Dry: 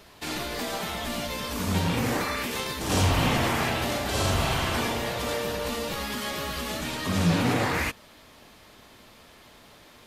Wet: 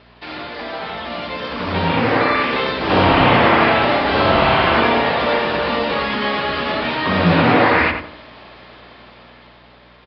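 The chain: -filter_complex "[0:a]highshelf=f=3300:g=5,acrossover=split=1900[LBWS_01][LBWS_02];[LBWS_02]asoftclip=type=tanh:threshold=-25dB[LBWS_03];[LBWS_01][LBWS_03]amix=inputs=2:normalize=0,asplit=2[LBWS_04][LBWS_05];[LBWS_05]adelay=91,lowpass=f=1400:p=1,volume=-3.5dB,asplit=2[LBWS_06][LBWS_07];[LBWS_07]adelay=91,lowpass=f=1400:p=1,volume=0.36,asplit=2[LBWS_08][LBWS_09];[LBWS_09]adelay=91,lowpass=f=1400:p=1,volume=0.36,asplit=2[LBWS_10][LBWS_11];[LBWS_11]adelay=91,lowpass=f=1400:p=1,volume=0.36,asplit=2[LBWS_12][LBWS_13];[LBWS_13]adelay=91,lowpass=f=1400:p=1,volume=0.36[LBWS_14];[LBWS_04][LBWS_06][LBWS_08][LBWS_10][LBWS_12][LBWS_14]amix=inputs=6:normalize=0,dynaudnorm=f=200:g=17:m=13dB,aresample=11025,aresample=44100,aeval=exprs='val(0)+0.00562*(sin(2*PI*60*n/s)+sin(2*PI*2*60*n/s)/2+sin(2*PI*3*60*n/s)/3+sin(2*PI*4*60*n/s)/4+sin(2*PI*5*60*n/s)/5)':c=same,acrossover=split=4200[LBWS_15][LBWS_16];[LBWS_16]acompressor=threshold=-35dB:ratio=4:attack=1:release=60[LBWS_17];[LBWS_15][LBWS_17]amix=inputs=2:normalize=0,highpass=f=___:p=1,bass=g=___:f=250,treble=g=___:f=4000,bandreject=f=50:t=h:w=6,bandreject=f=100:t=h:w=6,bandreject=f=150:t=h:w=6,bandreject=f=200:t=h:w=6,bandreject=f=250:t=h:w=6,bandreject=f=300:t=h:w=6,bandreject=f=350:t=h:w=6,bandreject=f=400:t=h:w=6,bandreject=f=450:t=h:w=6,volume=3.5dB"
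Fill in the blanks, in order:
87, -6, -13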